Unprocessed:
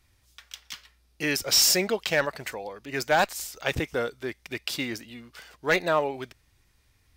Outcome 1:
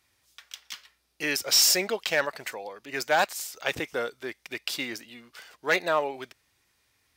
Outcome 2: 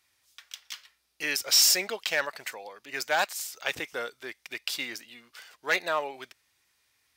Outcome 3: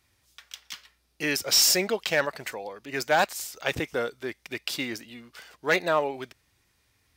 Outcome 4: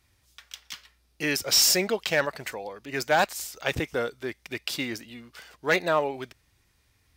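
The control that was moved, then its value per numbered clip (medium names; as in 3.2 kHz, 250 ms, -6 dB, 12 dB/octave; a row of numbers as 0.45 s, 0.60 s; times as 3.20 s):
high-pass, cutoff frequency: 400 Hz, 1.1 kHz, 150 Hz, 57 Hz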